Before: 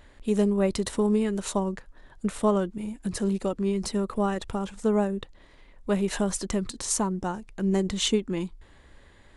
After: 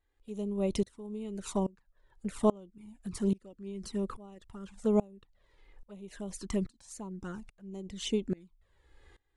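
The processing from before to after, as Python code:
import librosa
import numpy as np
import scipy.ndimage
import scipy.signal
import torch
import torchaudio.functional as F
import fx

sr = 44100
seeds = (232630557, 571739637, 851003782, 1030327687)

y = fx.env_flanger(x, sr, rest_ms=2.7, full_db=-21.5)
y = fx.tremolo_decay(y, sr, direction='swelling', hz=1.2, depth_db=26)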